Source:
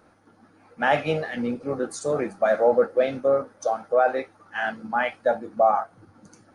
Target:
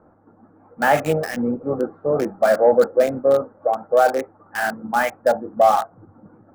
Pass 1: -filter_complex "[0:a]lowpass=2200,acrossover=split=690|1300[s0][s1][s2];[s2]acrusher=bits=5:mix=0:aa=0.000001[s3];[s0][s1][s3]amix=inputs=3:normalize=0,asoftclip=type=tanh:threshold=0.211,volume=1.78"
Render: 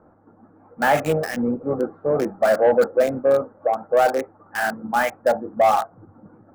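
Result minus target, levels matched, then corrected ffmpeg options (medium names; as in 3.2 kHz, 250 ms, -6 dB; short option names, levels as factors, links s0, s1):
saturation: distortion +14 dB
-filter_complex "[0:a]lowpass=2200,acrossover=split=690|1300[s0][s1][s2];[s2]acrusher=bits=5:mix=0:aa=0.000001[s3];[s0][s1][s3]amix=inputs=3:normalize=0,asoftclip=type=tanh:threshold=0.562,volume=1.78"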